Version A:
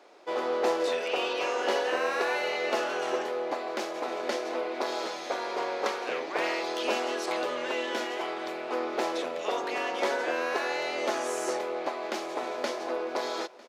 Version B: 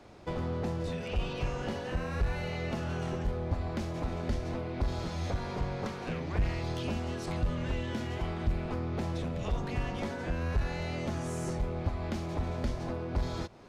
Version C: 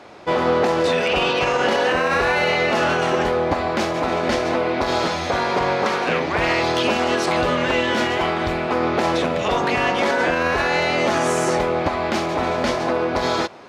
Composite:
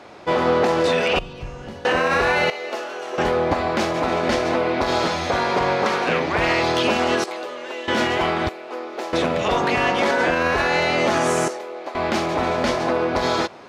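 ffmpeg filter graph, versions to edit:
-filter_complex "[0:a]asplit=4[s0][s1][s2][s3];[2:a]asplit=6[s4][s5][s6][s7][s8][s9];[s4]atrim=end=1.192[s10];[1:a]atrim=start=1.188:end=1.852[s11];[s5]atrim=start=1.848:end=2.502[s12];[s0]atrim=start=2.498:end=3.182[s13];[s6]atrim=start=3.178:end=7.242[s14];[s1]atrim=start=7.238:end=7.882[s15];[s7]atrim=start=7.878:end=8.492[s16];[s2]atrim=start=8.488:end=9.132[s17];[s8]atrim=start=9.128:end=11.482[s18];[s3]atrim=start=11.478:end=11.952[s19];[s9]atrim=start=11.948[s20];[s10][s11]acrossfade=d=0.004:c1=hsin:c2=hsin[s21];[s21][s12]acrossfade=d=0.004:c1=hsin:c2=hsin[s22];[s22][s13]acrossfade=d=0.004:c1=hsin:c2=hsin[s23];[s23][s14]acrossfade=d=0.004:c1=hsin:c2=hsin[s24];[s24][s15]acrossfade=d=0.004:c1=hsin:c2=hsin[s25];[s25][s16]acrossfade=d=0.004:c1=hsin:c2=hsin[s26];[s26][s17]acrossfade=d=0.004:c1=hsin:c2=hsin[s27];[s27][s18]acrossfade=d=0.004:c1=hsin:c2=hsin[s28];[s28][s19]acrossfade=d=0.004:c1=hsin:c2=hsin[s29];[s29][s20]acrossfade=d=0.004:c1=hsin:c2=hsin"

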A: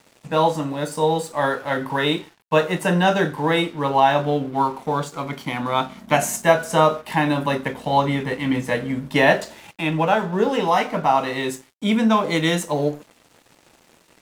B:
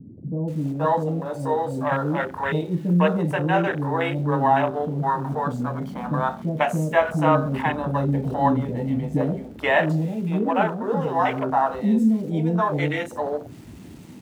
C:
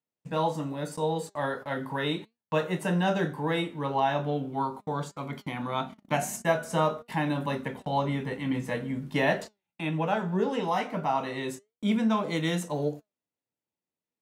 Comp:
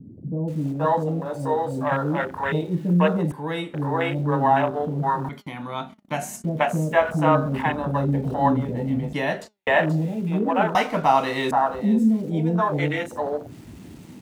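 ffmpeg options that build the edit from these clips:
-filter_complex "[2:a]asplit=3[s0][s1][s2];[1:a]asplit=5[s3][s4][s5][s6][s7];[s3]atrim=end=3.322[s8];[s0]atrim=start=3.318:end=3.742[s9];[s4]atrim=start=3.738:end=5.292[s10];[s1]atrim=start=5.288:end=6.442[s11];[s5]atrim=start=6.438:end=9.132[s12];[s2]atrim=start=9.128:end=9.672[s13];[s6]atrim=start=9.668:end=10.752[s14];[0:a]atrim=start=10.748:end=11.512[s15];[s7]atrim=start=11.508[s16];[s8][s9]acrossfade=d=0.004:c1=hsin:c2=hsin[s17];[s17][s10]acrossfade=d=0.004:c1=hsin:c2=hsin[s18];[s18][s11]acrossfade=d=0.004:c1=hsin:c2=hsin[s19];[s19][s12]acrossfade=d=0.004:c1=hsin:c2=hsin[s20];[s20][s13]acrossfade=d=0.004:c1=hsin:c2=hsin[s21];[s21][s14]acrossfade=d=0.004:c1=hsin:c2=hsin[s22];[s22][s15]acrossfade=d=0.004:c1=hsin:c2=hsin[s23];[s23][s16]acrossfade=d=0.004:c1=hsin:c2=hsin"

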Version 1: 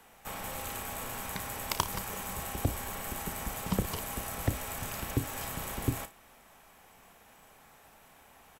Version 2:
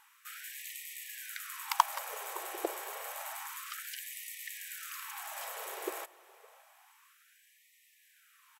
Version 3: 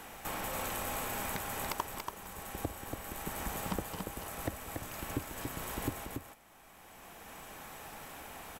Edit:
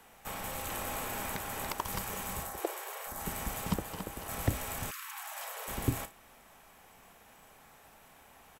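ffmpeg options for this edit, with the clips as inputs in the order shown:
-filter_complex "[2:a]asplit=2[s0][s1];[1:a]asplit=2[s2][s3];[0:a]asplit=5[s4][s5][s6][s7][s8];[s4]atrim=end=0.692[s9];[s0]atrim=start=0.688:end=1.852[s10];[s5]atrim=start=1.848:end=2.62[s11];[s2]atrim=start=2.38:end=3.28[s12];[s6]atrim=start=3.04:end=3.742[s13];[s1]atrim=start=3.738:end=4.292[s14];[s7]atrim=start=4.288:end=4.912[s15];[s3]atrim=start=4.908:end=5.682[s16];[s8]atrim=start=5.678[s17];[s9][s10]acrossfade=d=0.004:c1=hsin:c2=hsin[s18];[s18][s11]acrossfade=d=0.004:c1=hsin:c2=hsin[s19];[s19][s12]acrossfade=d=0.24:c1=tri:c2=tri[s20];[s20][s13]acrossfade=d=0.24:c1=tri:c2=tri[s21];[s21][s14]acrossfade=d=0.004:c1=hsin:c2=hsin[s22];[s22][s15]acrossfade=d=0.004:c1=hsin:c2=hsin[s23];[s23][s16]acrossfade=d=0.004:c1=hsin:c2=hsin[s24];[s24][s17]acrossfade=d=0.004:c1=hsin:c2=hsin"

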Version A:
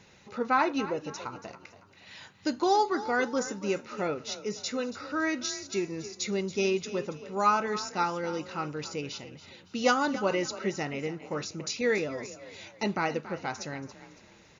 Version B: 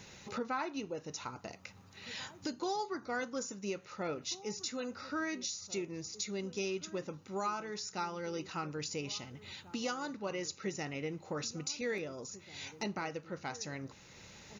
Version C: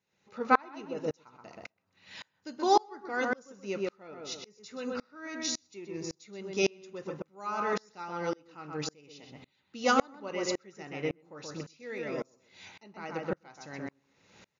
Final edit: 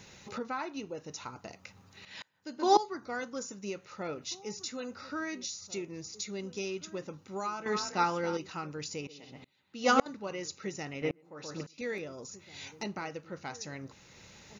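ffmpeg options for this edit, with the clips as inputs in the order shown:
-filter_complex "[2:a]asplit=3[s0][s1][s2];[1:a]asplit=5[s3][s4][s5][s6][s7];[s3]atrim=end=2.052[s8];[s0]atrim=start=2.048:end=2.772[s9];[s4]atrim=start=2.768:end=7.662[s10];[0:a]atrim=start=7.658:end=8.372[s11];[s5]atrim=start=8.368:end=9.072[s12];[s1]atrim=start=9.068:end=10.062[s13];[s6]atrim=start=10.058:end=11.022[s14];[s2]atrim=start=11.018:end=11.782[s15];[s7]atrim=start=11.778[s16];[s8][s9]acrossfade=d=0.004:c1=hsin:c2=hsin[s17];[s17][s10]acrossfade=d=0.004:c1=hsin:c2=hsin[s18];[s18][s11]acrossfade=d=0.004:c1=hsin:c2=hsin[s19];[s19][s12]acrossfade=d=0.004:c1=hsin:c2=hsin[s20];[s20][s13]acrossfade=d=0.004:c1=hsin:c2=hsin[s21];[s21][s14]acrossfade=d=0.004:c1=hsin:c2=hsin[s22];[s22][s15]acrossfade=d=0.004:c1=hsin:c2=hsin[s23];[s23][s16]acrossfade=d=0.004:c1=hsin:c2=hsin"

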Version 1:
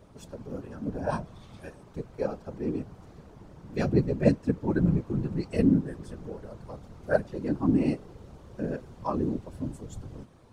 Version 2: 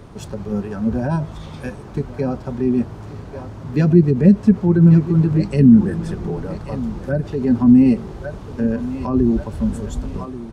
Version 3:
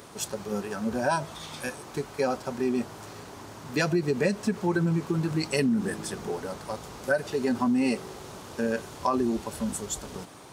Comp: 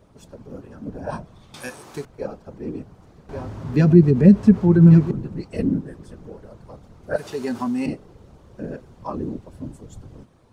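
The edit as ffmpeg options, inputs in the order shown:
-filter_complex "[2:a]asplit=2[s0][s1];[0:a]asplit=4[s2][s3][s4][s5];[s2]atrim=end=1.542[s6];[s0]atrim=start=1.538:end=2.052[s7];[s3]atrim=start=2.048:end=3.292[s8];[1:a]atrim=start=3.288:end=5.112[s9];[s4]atrim=start=5.108:end=7.162[s10];[s1]atrim=start=7.158:end=7.862[s11];[s5]atrim=start=7.858[s12];[s6][s7]acrossfade=d=0.004:c1=hsin:c2=hsin[s13];[s13][s8]acrossfade=d=0.004:c1=hsin:c2=hsin[s14];[s14][s9]acrossfade=d=0.004:c1=hsin:c2=hsin[s15];[s15][s10]acrossfade=d=0.004:c1=hsin:c2=hsin[s16];[s16][s11]acrossfade=d=0.004:c1=hsin:c2=hsin[s17];[s17][s12]acrossfade=d=0.004:c1=hsin:c2=hsin"

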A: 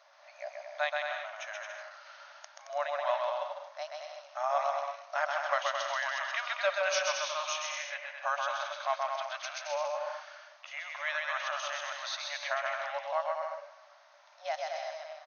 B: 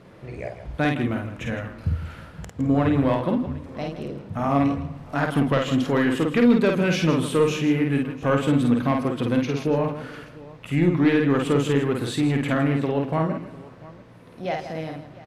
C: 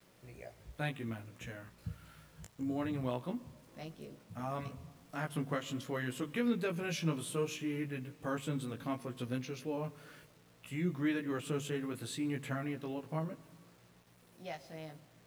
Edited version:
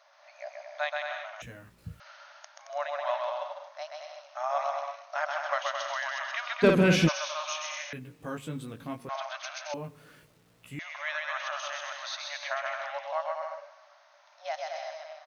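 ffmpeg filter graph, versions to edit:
-filter_complex "[2:a]asplit=3[s0][s1][s2];[0:a]asplit=5[s3][s4][s5][s6][s7];[s3]atrim=end=1.422[s8];[s0]atrim=start=1.418:end=2.002[s9];[s4]atrim=start=1.998:end=6.64[s10];[1:a]atrim=start=6.62:end=7.09[s11];[s5]atrim=start=7.07:end=7.932[s12];[s1]atrim=start=7.928:end=9.092[s13];[s6]atrim=start=9.088:end=9.742[s14];[s2]atrim=start=9.738:end=10.792[s15];[s7]atrim=start=10.788[s16];[s8][s9]acrossfade=d=0.004:c1=hsin:c2=hsin[s17];[s17][s10]acrossfade=d=0.004:c1=hsin:c2=hsin[s18];[s18][s11]acrossfade=d=0.02:c1=tri:c2=tri[s19];[s19][s12]acrossfade=d=0.02:c1=tri:c2=tri[s20];[s20][s13]acrossfade=d=0.004:c1=hsin:c2=hsin[s21];[s21][s14]acrossfade=d=0.004:c1=hsin:c2=hsin[s22];[s22][s15]acrossfade=d=0.004:c1=hsin:c2=hsin[s23];[s23][s16]acrossfade=d=0.004:c1=hsin:c2=hsin"

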